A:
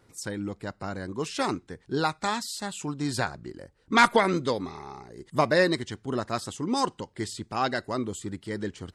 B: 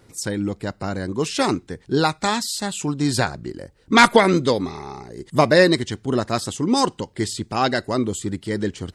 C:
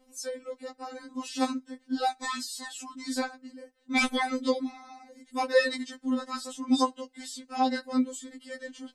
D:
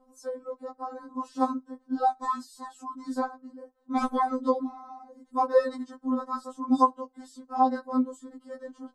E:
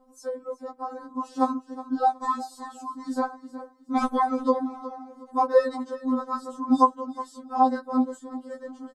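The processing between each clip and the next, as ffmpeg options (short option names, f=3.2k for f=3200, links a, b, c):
-af "equalizer=f=1.2k:w=0.9:g=-4,volume=9dB"
-af "afftfilt=real='re*3.46*eq(mod(b,12),0)':imag='im*3.46*eq(mod(b,12),0)':win_size=2048:overlap=0.75,volume=-8dB"
-af "highshelf=f=1.6k:t=q:w=3:g=-13"
-af "aecho=1:1:366|732|1098:0.168|0.0487|0.0141,volume=2.5dB"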